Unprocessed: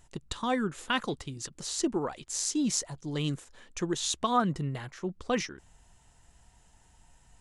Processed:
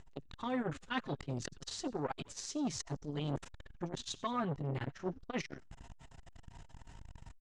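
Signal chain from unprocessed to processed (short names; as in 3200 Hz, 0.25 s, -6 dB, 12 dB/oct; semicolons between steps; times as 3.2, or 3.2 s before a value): low shelf 130 Hz +2 dB; comb 7.5 ms, depth 55%; reverse; compressor 20:1, threshold -40 dBFS, peak gain reduction 21.5 dB; reverse; air absorption 110 m; on a send: frequency-shifting echo 90 ms, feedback 40%, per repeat -110 Hz, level -19.5 dB; on the sum: core saturation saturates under 670 Hz; gain +10 dB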